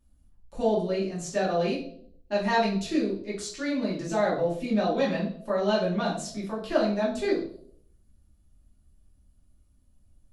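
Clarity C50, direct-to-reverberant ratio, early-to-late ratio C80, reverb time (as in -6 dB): 6.5 dB, -6.5 dB, 11.0 dB, 0.65 s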